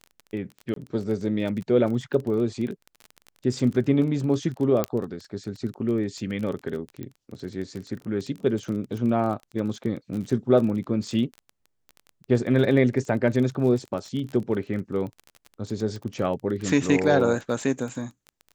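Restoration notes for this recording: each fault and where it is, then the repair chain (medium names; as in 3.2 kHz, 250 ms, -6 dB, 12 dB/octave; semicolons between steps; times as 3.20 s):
crackle 22 per s -31 dBFS
0.74–0.76 s: dropout 23 ms
4.84 s: pop -9 dBFS
7.03 s: pop -23 dBFS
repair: de-click; interpolate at 0.74 s, 23 ms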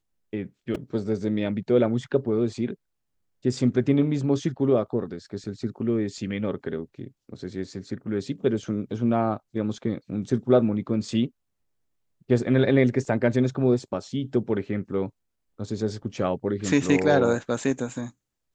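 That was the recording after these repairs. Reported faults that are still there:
7.03 s: pop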